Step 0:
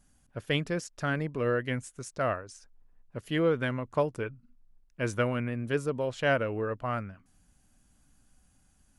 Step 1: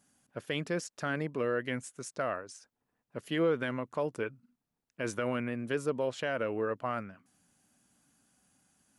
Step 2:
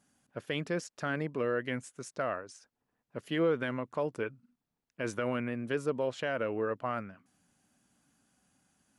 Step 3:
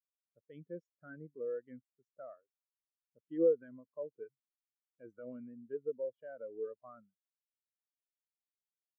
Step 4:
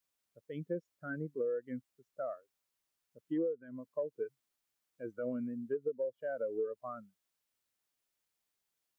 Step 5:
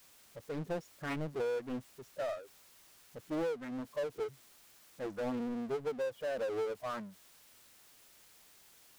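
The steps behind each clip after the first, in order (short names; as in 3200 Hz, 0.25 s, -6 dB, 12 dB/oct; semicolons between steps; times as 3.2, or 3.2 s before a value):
HPF 180 Hz 12 dB/oct; limiter -21 dBFS, peak gain reduction 9 dB
high shelf 7500 Hz -7 dB
spectral expander 2.5:1; gain +1.5 dB
compressor 16:1, threshold -42 dBFS, peak gain reduction 19.5 dB; gain +10.5 dB
power-law curve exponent 0.5; Doppler distortion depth 0.78 ms; gain -3 dB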